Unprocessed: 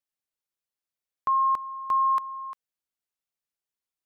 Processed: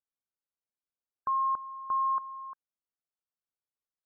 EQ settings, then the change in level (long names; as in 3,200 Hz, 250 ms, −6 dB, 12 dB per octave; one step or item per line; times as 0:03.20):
linear-phase brick-wall low-pass 1,600 Hz
−5.5 dB